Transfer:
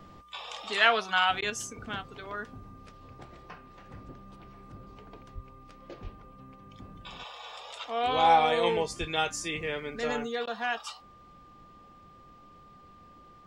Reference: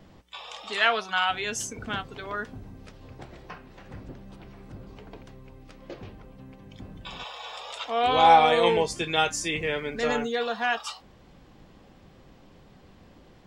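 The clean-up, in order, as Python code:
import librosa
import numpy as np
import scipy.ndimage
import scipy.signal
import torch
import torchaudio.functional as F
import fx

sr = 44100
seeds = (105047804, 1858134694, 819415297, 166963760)

y = fx.notch(x, sr, hz=1200.0, q=30.0)
y = fx.highpass(y, sr, hz=140.0, slope=24, at=(5.34, 5.46), fade=0.02)
y = fx.highpass(y, sr, hz=140.0, slope=24, at=(6.03, 6.15), fade=0.02)
y = fx.highpass(y, sr, hz=140.0, slope=24, at=(8.99, 9.11), fade=0.02)
y = fx.fix_interpolate(y, sr, at_s=(1.41, 10.46), length_ms=11.0)
y = fx.fix_level(y, sr, at_s=1.5, step_db=5.0)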